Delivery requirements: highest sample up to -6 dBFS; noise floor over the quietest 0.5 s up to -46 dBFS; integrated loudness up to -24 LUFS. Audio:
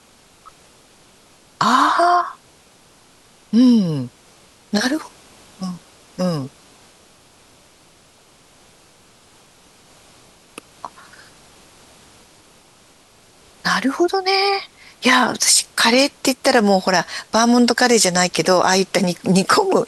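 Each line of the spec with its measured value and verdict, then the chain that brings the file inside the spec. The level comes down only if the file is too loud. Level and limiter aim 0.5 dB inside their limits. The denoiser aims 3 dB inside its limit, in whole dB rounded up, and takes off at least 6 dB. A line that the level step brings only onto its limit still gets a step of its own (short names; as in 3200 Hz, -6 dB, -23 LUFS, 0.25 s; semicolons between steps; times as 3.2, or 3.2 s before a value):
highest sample -3.0 dBFS: fail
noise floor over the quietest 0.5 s -51 dBFS: OK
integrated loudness -16.5 LUFS: fail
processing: gain -8 dB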